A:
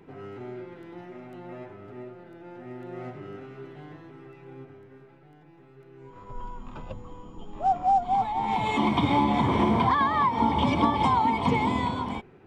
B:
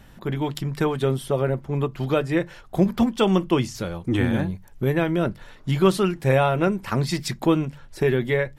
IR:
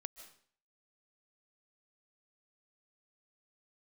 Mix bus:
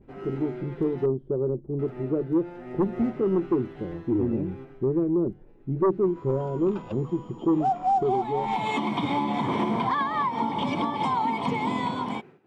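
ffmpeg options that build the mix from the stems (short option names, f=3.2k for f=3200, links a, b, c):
-filter_complex "[0:a]agate=range=-33dB:threshold=-44dB:ratio=3:detection=peak,highpass=f=130:w=0.5412,highpass=f=130:w=1.3066,volume=2dB,asplit=3[a][b][c];[a]atrim=end=1.06,asetpts=PTS-STARTPTS,afade=t=out:st=1.056:d=0.004:c=hsin[d];[b]atrim=start=1.06:end=1.79,asetpts=PTS-STARTPTS,volume=0[e];[c]atrim=start=1.79,asetpts=PTS-STARTPTS,afade=t=in:d=0.004:c=hsin[f];[d][e][f]concat=n=3:v=0:a=1[g];[1:a]lowpass=f=370:t=q:w=3.7,aeval=exprs='1.12*sin(PI/2*2*val(0)/1.12)':c=same,volume=-17.5dB[h];[g][h]amix=inputs=2:normalize=0,alimiter=limit=-16.5dB:level=0:latency=1:release=432"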